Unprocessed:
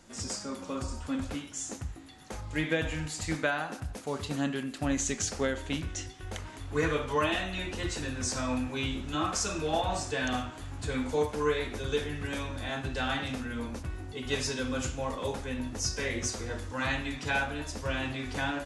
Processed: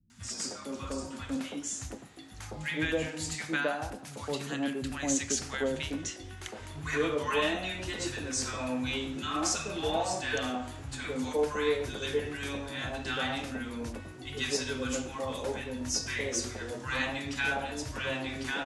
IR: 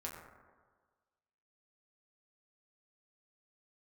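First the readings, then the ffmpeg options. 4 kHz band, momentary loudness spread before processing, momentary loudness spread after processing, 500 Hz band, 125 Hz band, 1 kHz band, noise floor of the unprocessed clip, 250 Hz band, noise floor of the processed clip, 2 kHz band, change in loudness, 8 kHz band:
+1.0 dB, 8 LU, 9 LU, 0.0 dB, -4.5 dB, -1.5 dB, -46 dBFS, -1.0 dB, -46 dBFS, 0.0 dB, -0.5 dB, +1.0 dB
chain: -filter_complex "[0:a]highpass=f=130:p=1,acrossover=split=170|990[a][b][c];[c]adelay=100[d];[b]adelay=210[e];[a][e][d]amix=inputs=3:normalize=0,volume=1dB"

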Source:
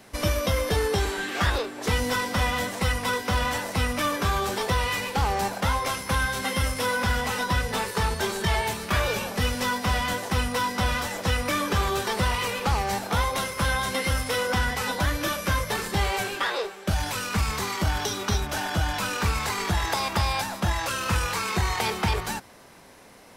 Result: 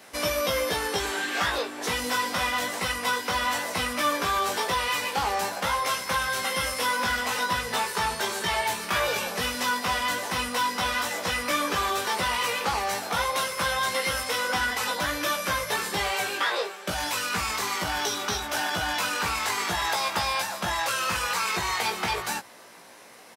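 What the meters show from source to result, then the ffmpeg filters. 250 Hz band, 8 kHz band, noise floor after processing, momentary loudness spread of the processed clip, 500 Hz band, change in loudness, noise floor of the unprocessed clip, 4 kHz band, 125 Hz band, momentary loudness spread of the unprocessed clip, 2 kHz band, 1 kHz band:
-5.5 dB, +1.5 dB, -42 dBFS, 2 LU, -2.0 dB, -0.5 dB, -43 dBFS, +1.5 dB, -13.5 dB, 2 LU, +1.0 dB, +1.0 dB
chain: -filter_complex "[0:a]highpass=f=510:p=1,asplit=2[a][b];[b]alimiter=limit=-21dB:level=0:latency=1:release=231,volume=2.5dB[c];[a][c]amix=inputs=2:normalize=0,asplit=2[d][e];[e]adelay=17,volume=-4dB[f];[d][f]amix=inputs=2:normalize=0,volume=-5.5dB"

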